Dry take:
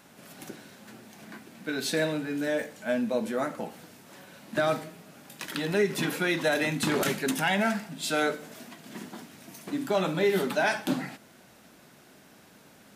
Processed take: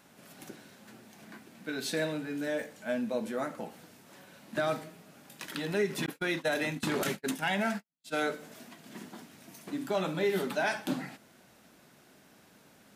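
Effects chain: 6.06–8.23 s: gate -29 dBFS, range -56 dB; trim -4.5 dB

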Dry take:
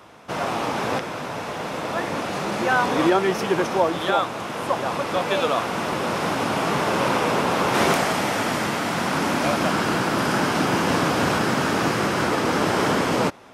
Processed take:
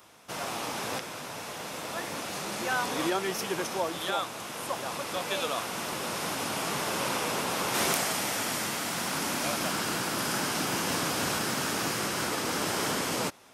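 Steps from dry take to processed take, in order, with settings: pre-emphasis filter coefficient 0.8; trim +2.5 dB

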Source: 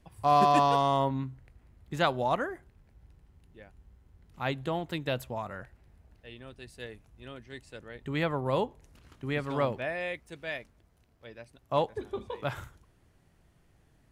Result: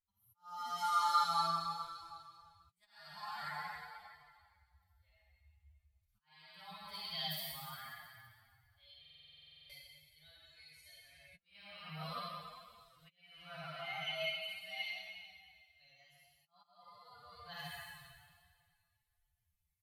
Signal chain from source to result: peaking EQ 11 kHz +12.5 dB 1.5 oct; doubling 39 ms -9.5 dB; Schroeder reverb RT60 2 s, combs from 32 ms, DRR -6.5 dB; slow attack 618 ms; time stretch by phase-locked vocoder 1.7×; level rider gain up to 5 dB; amplifier tone stack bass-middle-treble 10-0-10; tape speed +21%; in parallel at -7 dB: short-mantissa float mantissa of 2-bit; on the sum: flange 0.47 Hz, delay 8.4 ms, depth 6.4 ms, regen -28%; buffer glitch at 9.00 s, samples 2048, times 14; spectral contrast expander 1.5:1; trim -7 dB

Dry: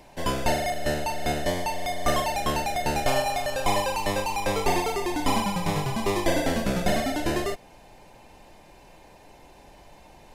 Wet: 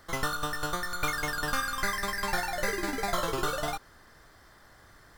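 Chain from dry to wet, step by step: speed mistake 7.5 ips tape played at 15 ips; trim -5.5 dB

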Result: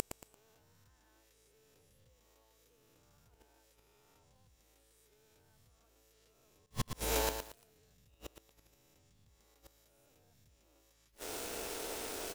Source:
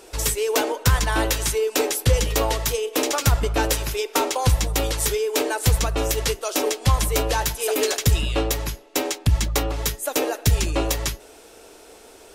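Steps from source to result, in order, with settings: reverse spectral sustain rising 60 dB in 2.10 s; 6.66–7.29 s: expander -7 dBFS; compression 3:1, threshold -27 dBFS, peak gain reduction 13 dB; bit crusher 7-bit; inverted gate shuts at -19 dBFS, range -41 dB; on a send: delay 111 ms -23 dB; on the sum: bit-crushed delay 114 ms, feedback 35%, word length 8-bit, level -6.5 dB; trim -1 dB

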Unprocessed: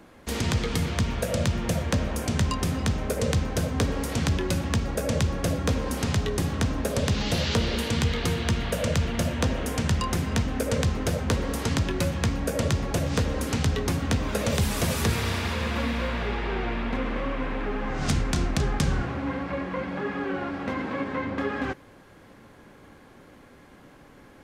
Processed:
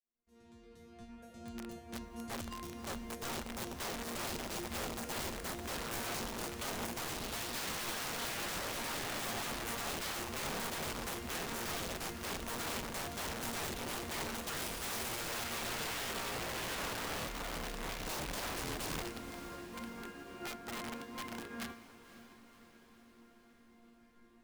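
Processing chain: fade-in on the opening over 4.26 s; bass shelf 420 Hz +9.5 dB; in parallel at -11 dB: overload inside the chain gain 14 dB; on the sum: chord resonator A#3 fifth, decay 0.46 s; integer overflow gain 35.5 dB; echo that smears into a reverb 536 ms, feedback 61%, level -10.5 dB; upward expansion 1.5:1, over -49 dBFS; trim +1 dB

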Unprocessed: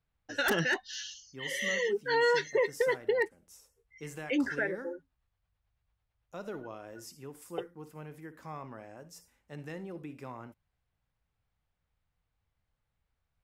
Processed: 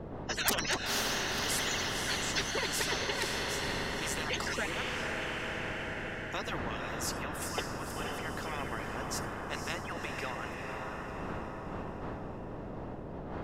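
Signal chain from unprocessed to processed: harmonic-percussive separation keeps percussive; wind noise 230 Hz -52 dBFS; low-pass 3.2 kHz 6 dB/octave; bass shelf 480 Hz +9.5 dB; band-stop 2.3 kHz, Q 13; echo that smears into a reverb 515 ms, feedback 52%, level -7.5 dB; spectrum-flattening compressor 4:1; trim +8.5 dB

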